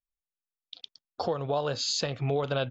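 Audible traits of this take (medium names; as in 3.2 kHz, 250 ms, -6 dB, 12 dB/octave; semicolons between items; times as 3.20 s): noise floor -94 dBFS; spectral tilt -4.0 dB/octave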